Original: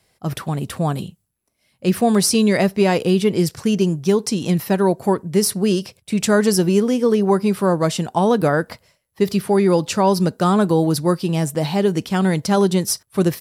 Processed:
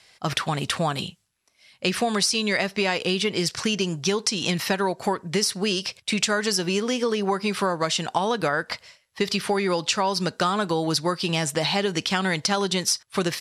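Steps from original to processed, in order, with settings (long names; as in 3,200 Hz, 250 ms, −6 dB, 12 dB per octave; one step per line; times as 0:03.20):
low-pass filter 5,800 Hz 12 dB per octave
tilt shelving filter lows −9 dB, about 820 Hz
downward compressor, threshold −25 dBFS, peak gain reduction 13 dB
level +4.5 dB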